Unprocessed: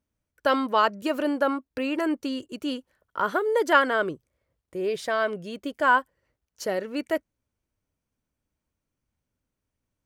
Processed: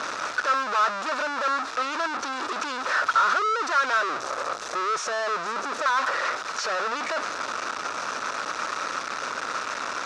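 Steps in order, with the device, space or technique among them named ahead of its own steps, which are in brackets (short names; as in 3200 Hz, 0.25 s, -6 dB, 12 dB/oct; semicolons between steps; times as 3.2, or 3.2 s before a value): 4.01–5.86 Chebyshev band-stop 630–5600 Hz, order 5; home computer beeper (infinite clipping; speaker cabinet 790–5200 Hz, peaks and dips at 810 Hz -3 dB, 1300 Hz +10 dB, 2100 Hz -6 dB, 3100 Hz -10 dB, 4500 Hz -5 dB); gain +6.5 dB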